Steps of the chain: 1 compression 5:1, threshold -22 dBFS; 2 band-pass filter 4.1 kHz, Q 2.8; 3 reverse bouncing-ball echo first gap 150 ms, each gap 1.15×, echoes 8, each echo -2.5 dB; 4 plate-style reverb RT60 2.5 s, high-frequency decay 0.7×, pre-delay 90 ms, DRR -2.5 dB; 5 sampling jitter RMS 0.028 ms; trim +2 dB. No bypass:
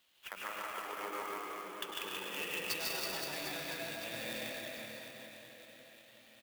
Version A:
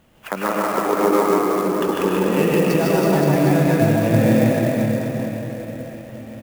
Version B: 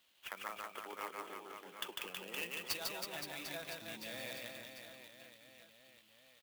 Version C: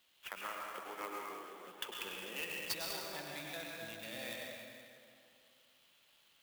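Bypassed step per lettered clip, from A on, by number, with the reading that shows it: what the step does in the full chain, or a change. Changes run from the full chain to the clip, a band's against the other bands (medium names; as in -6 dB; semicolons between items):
2, 125 Hz band +21.0 dB; 4, crest factor change +4.0 dB; 3, momentary loudness spread change -5 LU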